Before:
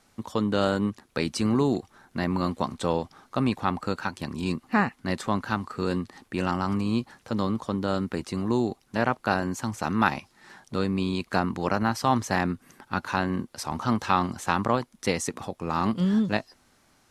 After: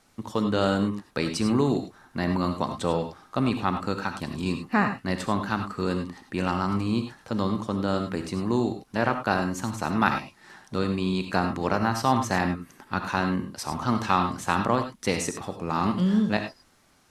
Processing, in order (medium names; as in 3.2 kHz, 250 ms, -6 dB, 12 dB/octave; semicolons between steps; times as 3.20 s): gated-style reverb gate 120 ms rising, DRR 6.5 dB